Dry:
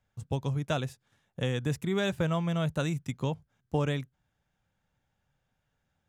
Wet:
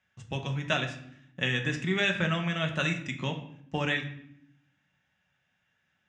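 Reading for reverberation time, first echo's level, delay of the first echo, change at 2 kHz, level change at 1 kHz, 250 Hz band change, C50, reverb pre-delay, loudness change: 0.70 s, none, none, +10.0 dB, +1.5 dB, -1.0 dB, 9.5 dB, 5 ms, +1.5 dB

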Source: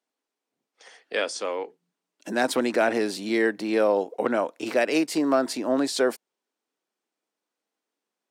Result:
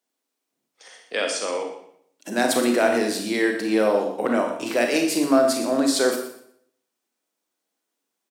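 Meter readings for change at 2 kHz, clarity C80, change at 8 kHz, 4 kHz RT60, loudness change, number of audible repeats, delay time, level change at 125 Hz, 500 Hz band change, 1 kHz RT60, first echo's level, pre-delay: +2.5 dB, 7.5 dB, +7.5 dB, 0.65 s, +3.0 dB, 1, 0.121 s, +3.0 dB, +2.5 dB, 0.65 s, -12.5 dB, 29 ms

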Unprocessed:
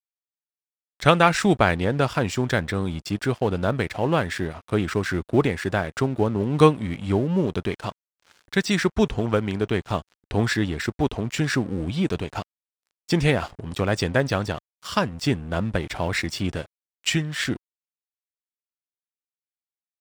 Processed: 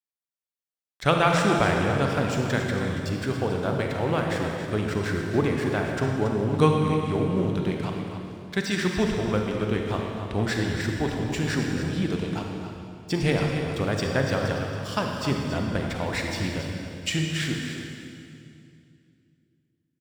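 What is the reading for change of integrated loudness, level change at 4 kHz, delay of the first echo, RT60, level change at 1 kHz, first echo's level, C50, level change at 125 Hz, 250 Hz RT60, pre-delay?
-2.0 dB, -2.0 dB, 0.279 s, 2.4 s, -2.5 dB, -9.5 dB, 1.0 dB, -1.0 dB, 3.0 s, 34 ms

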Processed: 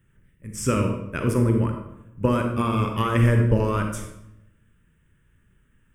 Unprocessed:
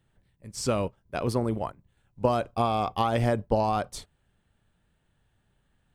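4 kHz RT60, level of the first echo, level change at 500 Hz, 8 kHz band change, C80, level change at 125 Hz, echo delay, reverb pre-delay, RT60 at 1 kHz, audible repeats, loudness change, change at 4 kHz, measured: 0.60 s, none, +1.5 dB, +4.5 dB, 8.0 dB, +10.5 dB, none, 33 ms, 0.80 s, none, +5.0 dB, 0.0 dB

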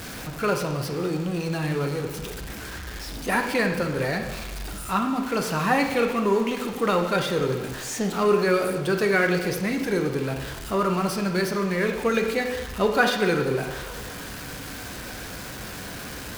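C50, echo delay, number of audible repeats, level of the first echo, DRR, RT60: 6.5 dB, none, none, none, 3.5 dB, 1.2 s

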